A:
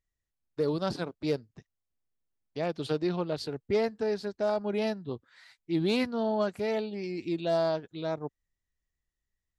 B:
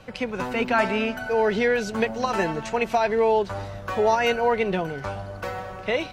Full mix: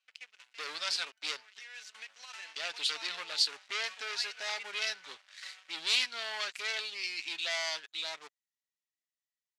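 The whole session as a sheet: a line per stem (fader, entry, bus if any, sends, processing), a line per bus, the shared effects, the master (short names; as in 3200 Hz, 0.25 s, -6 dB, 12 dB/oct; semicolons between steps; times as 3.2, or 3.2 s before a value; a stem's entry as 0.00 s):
+2.0 dB, 0.00 s, no send, comb 7.2 ms, depth 32%
1.53 s -20 dB -> 1.83 s -11.5 dB, 0.00 s, no send, limiter -15.5 dBFS, peak gain reduction 6.5 dB; auto duck -9 dB, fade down 0.45 s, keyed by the first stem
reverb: off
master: sample leveller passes 3; Butterworth band-pass 4400 Hz, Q 0.7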